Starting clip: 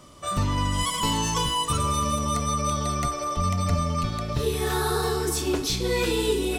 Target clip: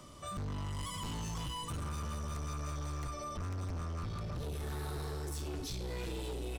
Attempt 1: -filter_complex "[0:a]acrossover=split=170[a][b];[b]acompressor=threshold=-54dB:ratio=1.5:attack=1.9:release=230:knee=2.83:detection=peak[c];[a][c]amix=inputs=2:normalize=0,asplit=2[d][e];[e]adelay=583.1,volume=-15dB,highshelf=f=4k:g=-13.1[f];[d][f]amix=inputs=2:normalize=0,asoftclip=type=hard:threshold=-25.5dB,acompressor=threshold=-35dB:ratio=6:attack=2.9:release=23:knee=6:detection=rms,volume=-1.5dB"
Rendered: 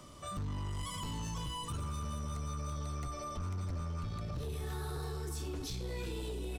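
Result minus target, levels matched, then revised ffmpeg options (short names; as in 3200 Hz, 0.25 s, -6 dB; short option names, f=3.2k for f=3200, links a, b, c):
hard clip: distortion -6 dB
-filter_complex "[0:a]acrossover=split=170[a][b];[b]acompressor=threshold=-54dB:ratio=1.5:attack=1.9:release=230:knee=2.83:detection=peak[c];[a][c]amix=inputs=2:normalize=0,asplit=2[d][e];[e]adelay=583.1,volume=-15dB,highshelf=f=4k:g=-13.1[f];[d][f]amix=inputs=2:normalize=0,asoftclip=type=hard:threshold=-32dB,acompressor=threshold=-35dB:ratio=6:attack=2.9:release=23:knee=6:detection=rms,volume=-1.5dB"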